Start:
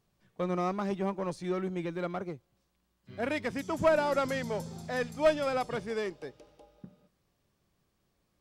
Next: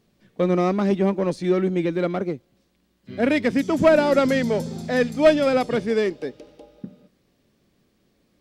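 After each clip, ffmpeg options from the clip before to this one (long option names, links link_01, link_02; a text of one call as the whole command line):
ffmpeg -i in.wav -af "equalizer=frequency=250:width_type=o:width=1:gain=10,equalizer=frequency=500:width_type=o:width=1:gain=5,equalizer=frequency=1000:width_type=o:width=1:gain=-3,equalizer=frequency=2000:width_type=o:width=1:gain=4,equalizer=frequency=4000:width_type=o:width=1:gain=4,volume=5.5dB" out.wav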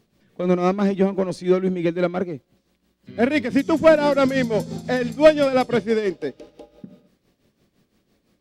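ffmpeg -i in.wav -af "tremolo=f=5.9:d=0.66,volume=3.5dB" out.wav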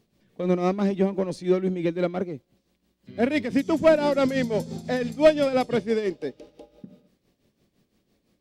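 ffmpeg -i in.wav -af "equalizer=frequency=1400:width=1.5:gain=-3.5,volume=-3.5dB" out.wav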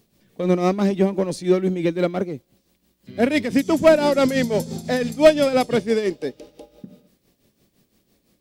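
ffmpeg -i in.wav -af "highshelf=frequency=7100:gain=11,volume=4dB" out.wav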